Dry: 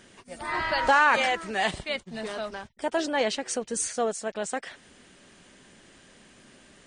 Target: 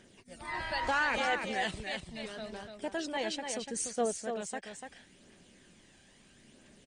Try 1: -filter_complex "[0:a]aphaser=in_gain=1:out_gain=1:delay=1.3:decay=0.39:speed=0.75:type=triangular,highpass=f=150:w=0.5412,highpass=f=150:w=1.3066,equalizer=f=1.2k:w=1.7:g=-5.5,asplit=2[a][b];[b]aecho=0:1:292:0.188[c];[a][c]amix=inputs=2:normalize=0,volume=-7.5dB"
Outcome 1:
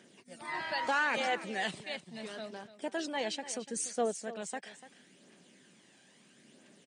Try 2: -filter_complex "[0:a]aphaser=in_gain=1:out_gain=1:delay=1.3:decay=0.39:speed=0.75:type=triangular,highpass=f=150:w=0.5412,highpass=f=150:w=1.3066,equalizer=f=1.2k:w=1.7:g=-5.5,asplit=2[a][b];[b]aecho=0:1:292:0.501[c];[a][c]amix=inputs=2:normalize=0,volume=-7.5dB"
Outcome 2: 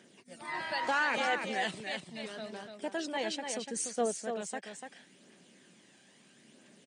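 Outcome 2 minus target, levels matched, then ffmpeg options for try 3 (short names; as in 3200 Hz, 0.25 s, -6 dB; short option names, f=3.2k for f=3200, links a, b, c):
125 Hz band -3.5 dB
-filter_complex "[0:a]aphaser=in_gain=1:out_gain=1:delay=1.3:decay=0.39:speed=0.75:type=triangular,equalizer=f=1.2k:w=1.7:g=-5.5,asplit=2[a][b];[b]aecho=0:1:292:0.501[c];[a][c]amix=inputs=2:normalize=0,volume=-7.5dB"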